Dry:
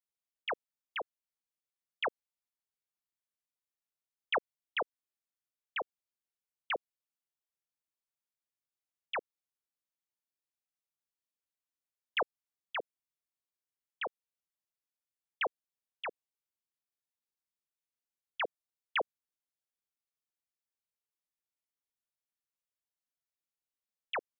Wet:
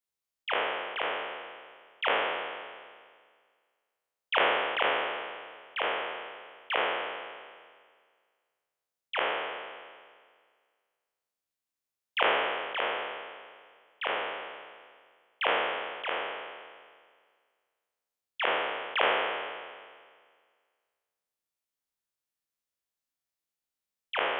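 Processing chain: spectral sustain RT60 1.83 s

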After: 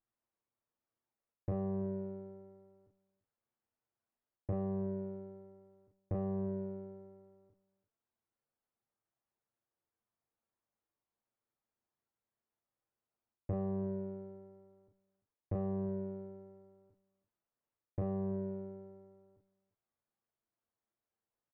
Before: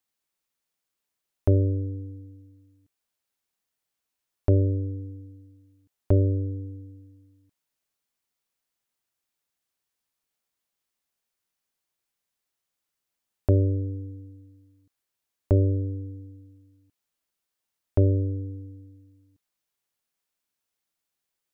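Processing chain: comb filter that takes the minimum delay 8.8 ms; low-pass 1.1 kHz 12 dB/octave; reverse; compression 12:1, threshold -29 dBFS, peak gain reduction 13 dB; reverse; Chebyshev shaper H 5 -29 dB, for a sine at -25 dBFS; doubling 36 ms -3 dB; echo from a far wall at 58 m, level -19 dB; trim -2.5 dB

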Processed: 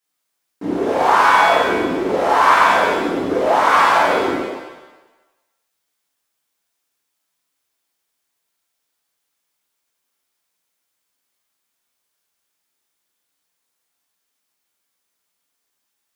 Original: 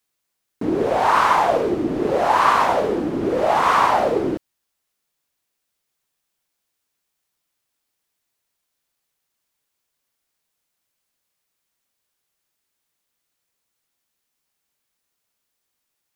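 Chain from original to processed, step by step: bass shelf 220 Hz -8 dB; pitch-shifted reverb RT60 1 s, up +7 st, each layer -8 dB, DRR -6.5 dB; trim -4.5 dB

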